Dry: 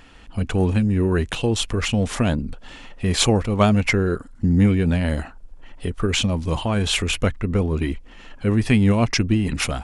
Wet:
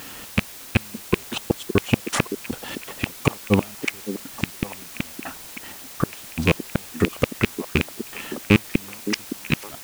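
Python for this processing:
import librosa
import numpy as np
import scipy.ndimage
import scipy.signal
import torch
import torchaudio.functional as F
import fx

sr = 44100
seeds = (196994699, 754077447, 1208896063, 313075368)

y = fx.rattle_buzz(x, sr, strikes_db=-22.0, level_db=-13.0)
y = scipy.signal.sosfilt(scipy.signal.butter(2, 120.0, 'highpass', fs=sr, output='sos'), y)
y = fx.step_gate(y, sr, bpm=120, pattern='xx.x..xx.xx.x.', floor_db=-60.0, edge_ms=4.5)
y = fx.gate_flip(y, sr, shuts_db=-11.0, range_db=-36)
y = fx.quant_dither(y, sr, seeds[0], bits=8, dither='triangular')
y = fx.echo_stepped(y, sr, ms=564, hz=310.0, octaves=1.4, feedback_pct=70, wet_db=-7.0)
y = F.gain(torch.from_numpy(y), 8.0).numpy()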